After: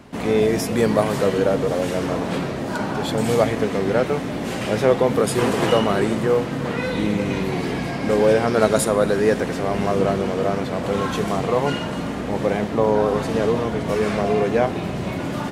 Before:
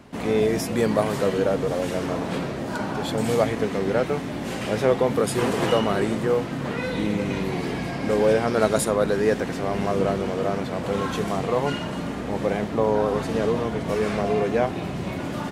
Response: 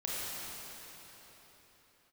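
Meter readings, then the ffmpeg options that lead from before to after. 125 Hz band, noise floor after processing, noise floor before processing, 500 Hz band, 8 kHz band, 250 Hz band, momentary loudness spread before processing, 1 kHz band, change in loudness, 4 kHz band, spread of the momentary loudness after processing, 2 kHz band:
+3.0 dB, −27 dBFS, −31 dBFS, +3.0 dB, +3.0 dB, +3.0 dB, 7 LU, +3.0 dB, +3.0 dB, +3.0 dB, 7 LU, +3.0 dB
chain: -filter_complex "[0:a]asplit=2[link_01][link_02];[1:a]atrim=start_sample=2205,asetrate=37926,aresample=44100[link_03];[link_02][link_03]afir=irnorm=-1:irlink=0,volume=-21.5dB[link_04];[link_01][link_04]amix=inputs=2:normalize=0,volume=2.5dB"

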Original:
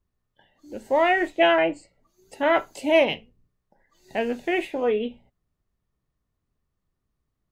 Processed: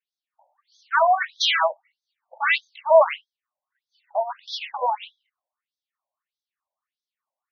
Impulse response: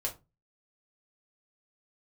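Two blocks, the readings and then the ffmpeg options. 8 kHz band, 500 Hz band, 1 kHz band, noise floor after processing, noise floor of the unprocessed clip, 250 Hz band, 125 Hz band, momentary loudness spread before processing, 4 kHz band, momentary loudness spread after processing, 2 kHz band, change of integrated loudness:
can't be measured, −0.5 dB, +4.0 dB, below −85 dBFS, −80 dBFS, below −40 dB, below −35 dB, 15 LU, +6.0 dB, 14 LU, +1.0 dB, +1.0 dB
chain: -af "aeval=exprs='0.631*(cos(1*acos(clip(val(0)/0.631,-1,1)))-cos(1*PI/2))+0.178*(cos(6*acos(clip(val(0)/0.631,-1,1)))-cos(6*PI/2))+0.0178*(cos(7*acos(clip(val(0)/0.631,-1,1)))-cos(7*PI/2))':channel_layout=same,afftfilt=real='re*between(b*sr/1024,720*pow(4700/720,0.5+0.5*sin(2*PI*1.6*pts/sr))/1.41,720*pow(4700/720,0.5+0.5*sin(2*PI*1.6*pts/sr))*1.41)':imag='im*between(b*sr/1024,720*pow(4700/720,0.5+0.5*sin(2*PI*1.6*pts/sr))/1.41,720*pow(4700/720,0.5+0.5*sin(2*PI*1.6*pts/sr))*1.41)':win_size=1024:overlap=0.75,volume=6dB"

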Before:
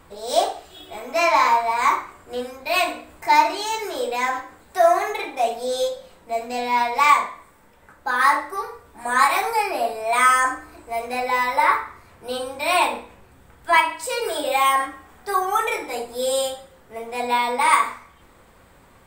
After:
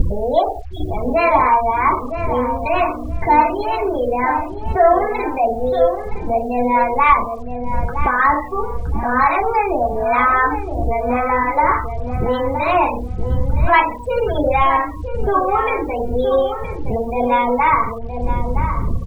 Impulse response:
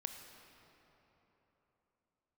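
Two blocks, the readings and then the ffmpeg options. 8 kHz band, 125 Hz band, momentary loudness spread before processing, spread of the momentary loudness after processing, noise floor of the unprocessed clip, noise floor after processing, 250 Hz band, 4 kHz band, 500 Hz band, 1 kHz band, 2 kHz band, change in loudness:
below −20 dB, can't be measured, 15 LU, 10 LU, −52 dBFS, −27 dBFS, +12.5 dB, −8.5 dB, +6.5 dB, +4.0 dB, +0.5 dB, +3.0 dB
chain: -filter_complex "[0:a]asplit=2[link_01][link_02];[link_02]acontrast=88,volume=-3dB[link_03];[link_01][link_03]amix=inputs=2:normalize=0,acrossover=split=830[link_04][link_05];[link_04]aeval=exprs='val(0)*(1-0.5/2+0.5/2*cos(2*PI*3.6*n/s))':channel_layout=same[link_06];[link_05]aeval=exprs='val(0)*(1-0.5/2-0.5/2*cos(2*PI*3.6*n/s))':channel_layout=same[link_07];[link_06][link_07]amix=inputs=2:normalize=0,acompressor=mode=upward:threshold=-16dB:ratio=2.5,aemphasis=mode=reproduction:type=riaa,afftfilt=real='re*gte(hypot(re,im),0.112)':imag='im*gte(hypot(re,im),0.112)':win_size=1024:overlap=0.75,bass=frequency=250:gain=3,treble=frequency=4000:gain=-5,acrusher=bits=7:mix=0:aa=0.5,asplit=2[link_08][link_09];[link_09]adelay=968,lowpass=frequency=1600:poles=1,volume=-8dB,asplit=2[link_10][link_11];[link_11]adelay=968,lowpass=frequency=1600:poles=1,volume=0.26,asplit=2[link_12][link_13];[link_13]adelay=968,lowpass=frequency=1600:poles=1,volume=0.26[link_14];[link_10][link_12][link_14]amix=inputs=3:normalize=0[link_15];[link_08][link_15]amix=inputs=2:normalize=0,volume=-2dB"

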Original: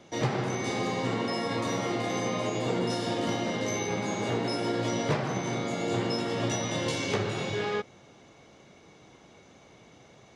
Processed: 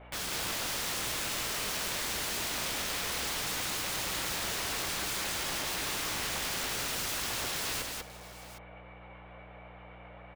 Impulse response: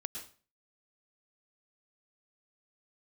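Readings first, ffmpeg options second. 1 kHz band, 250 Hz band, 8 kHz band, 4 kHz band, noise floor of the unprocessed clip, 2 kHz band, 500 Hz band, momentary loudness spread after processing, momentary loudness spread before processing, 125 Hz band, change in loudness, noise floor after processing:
−5.5 dB, −14.5 dB, +5.5 dB, +3.0 dB, −55 dBFS, 0.0 dB, −13.0 dB, 19 LU, 2 LU, −13.0 dB, −2.0 dB, −50 dBFS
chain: -filter_complex "[0:a]acontrast=74,highpass=frequency=460:width_type=q:width=0.5412,highpass=frequency=460:width_type=q:width=1.307,lowpass=frequency=2700:width_type=q:width=0.5176,lowpass=frequency=2700:width_type=q:width=0.7071,lowpass=frequency=2700:width_type=q:width=1.932,afreqshift=58,acrossover=split=740[link_01][link_02];[link_01]aeval=exprs='val(0)*(1-0.5/2+0.5/2*cos(2*PI*7.8*n/s))':channel_layout=same[link_03];[link_02]aeval=exprs='val(0)*(1-0.5/2-0.5/2*cos(2*PI*7.8*n/s))':channel_layout=same[link_04];[link_03][link_04]amix=inputs=2:normalize=0,aeval=exprs='(mod(37.6*val(0)+1,2)-1)/37.6':channel_layout=same,aeval=exprs='val(0)+0.00251*(sin(2*PI*60*n/s)+sin(2*PI*2*60*n/s)/2+sin(2*PI*3*60*n/s)/3+sin(2*PI*4*60*n/s)/4+sin(2*PI*5*60*n/s)/5)':channel_layout=same,asplit=2[link_05][link_06];[link_06]aecho=0:1:194|765:0.708|0.168[link_07];[link_05][link_07]amix=inputs=2:normalize=0"

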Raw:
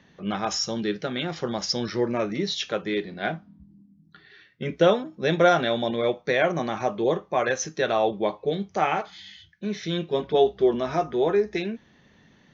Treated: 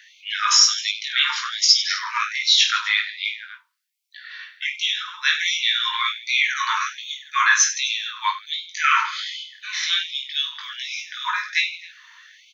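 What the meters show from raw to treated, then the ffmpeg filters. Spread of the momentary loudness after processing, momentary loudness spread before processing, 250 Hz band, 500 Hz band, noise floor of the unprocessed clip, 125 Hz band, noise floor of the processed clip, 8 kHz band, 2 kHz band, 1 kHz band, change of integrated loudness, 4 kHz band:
14 LU, 11 LU, below −40 dB, below −40 dB, −58 dBFS, below −40 dB, −53 dBFS, can't be measured, +10.5 dB, +2.5 dB, +5.0 dB, +14.0 dB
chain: -filter_complex "[0:a]asplit=2[link_01][link_02];[link_02]alimiter=limit=-17.5dB:level=0:latency=1,volume=-1dB[link_03];[link_01][link_03]amix=inputs=2:normalize=0,aecho=1:1:20|50|95|162.5|263.8:0.631|0.398|0.251|0.158|0.1,afftfilt=real='re*gte(b*sr/1024,880*pow(2100/880,0.5+0.5*sin(2*PI*1.3*pts/sr)))':imag='im*gte(b*sr/1024,880*pow(2100/880,0.5+0.5*sin(2*PI*1.3*pts/sr)))':win_size=1024:overlap=0.75,volume=7dB"

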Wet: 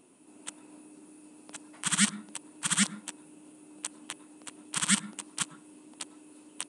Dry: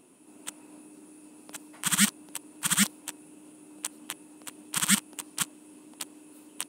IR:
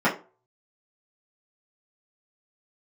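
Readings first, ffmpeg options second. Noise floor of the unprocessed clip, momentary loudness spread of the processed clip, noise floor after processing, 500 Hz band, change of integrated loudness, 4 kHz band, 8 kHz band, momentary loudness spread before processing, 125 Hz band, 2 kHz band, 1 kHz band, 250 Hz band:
−55 dBFS, 19 LU, −57 dBFS, −2.0 dB, −2.5 dB, −2.0 dB, −2.0 dB, 20 LU, −1.5 dB, −2.0 dB, −2.0 dB, −1.5 dB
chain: -filter_complex "[0:a]asplit=2[link_01][link_02];[1:a]atrim=start_sample=2205,asetrate=31311,aresample=44100,adelay=93[link_03];[link_02][link_03]afir=irnorm=-1:irlink=0,volume=-36dB[link_04];[link_01][link_04]amix=inputs=2:normalize=0,aresample=22050,aresample=44100,volume=-2dB"

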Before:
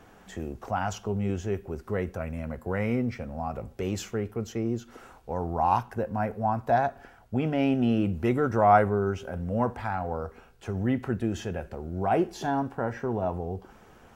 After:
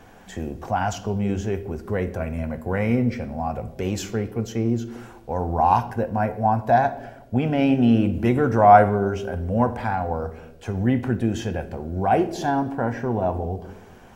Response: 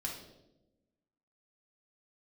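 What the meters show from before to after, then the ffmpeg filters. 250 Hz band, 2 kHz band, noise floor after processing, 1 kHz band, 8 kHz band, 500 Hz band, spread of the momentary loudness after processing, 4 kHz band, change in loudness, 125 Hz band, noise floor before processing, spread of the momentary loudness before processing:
+6.0 dB, +5.5 dB, −46 dBFS, +6.5 dB, can't be measured, +5.0 dB, 13 LU, +5.5 dB, +6.0 dB, +6.0 dB, −54 dBFS, 11 LU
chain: -filter_complex "[0:a]bandreject=frequency=1300:width=12,asplit=2[link_01][link_02];[1:a]atrim=start_sample=2205[link_03];[link_02][link_03]afir=irnorm=-1:irlink=0,volume=-7.5dB[link_04];[link_01][link_04]amix=inputs=2:normalize=0,volume=3dB"

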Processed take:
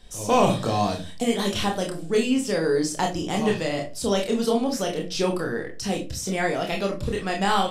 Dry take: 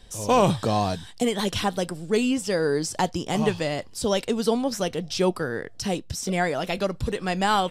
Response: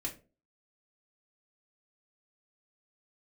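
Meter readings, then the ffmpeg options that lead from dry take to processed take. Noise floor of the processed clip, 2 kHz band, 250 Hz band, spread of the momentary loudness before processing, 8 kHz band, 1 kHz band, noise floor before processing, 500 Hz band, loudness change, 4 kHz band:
−35 dBFS, +0.5 dB, +1.0 dB, 7 LU, +0.5 dB, 0.0 dB, −44 dBFS, +0.5 dB, +0.5 dB, +0.5 dB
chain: -filter_complex "[0:a]bandreject=frequency=50:width_type=h:width=6,bandreject=frequency=100:width_type=h:width=6,bandreject=frequency=150:width_type=h:width=6,asplit=2[link_01][link_02];[1:a]atrim=start_sample=2205,lowshelf=frequency=480:gain=-4,adelay=26[link_03];[link_02][link_03]afir=irnorm=-1:irlink=0,volume=-0.5dB[link_04];[link_01][link_04]amix=inputs=2:normalize=0,volume=-2dB"

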